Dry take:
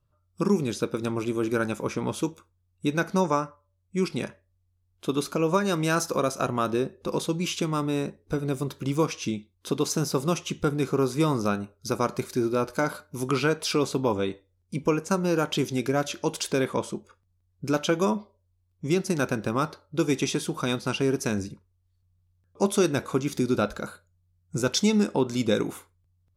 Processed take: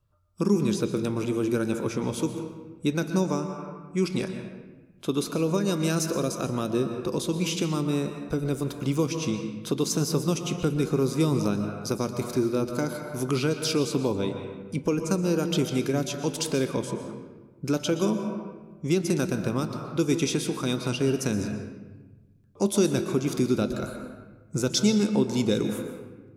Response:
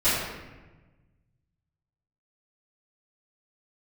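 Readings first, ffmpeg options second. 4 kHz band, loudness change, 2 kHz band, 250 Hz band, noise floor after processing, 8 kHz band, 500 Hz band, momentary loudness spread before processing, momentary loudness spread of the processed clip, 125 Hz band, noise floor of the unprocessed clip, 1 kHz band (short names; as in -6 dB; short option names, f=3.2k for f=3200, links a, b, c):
0.0 dB, 0.0 dB, -4.0 dB, +1.5 dB, -52 dBFS, +1.0 dB, -0.5 dB, 8 LU, 10 LU, +2.0 dB, -71 dBFS, -6.0 dB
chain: -filter_complex "[0:a]asplit=2[a][b];[1:a]atrim=start_sample=2205,adelay=114[c];[b][c]afir=irnorm=-1:irlink=0,volume=-24dB[d];[a][d]amix=inputs=2:normalize=0,acrossover=split=480|3000[e][f][g];[f]acompressor=threshold=-37dB:ratio=4[h];[e][h][g]amix=inputs=3:normalize=0,volume=1dB"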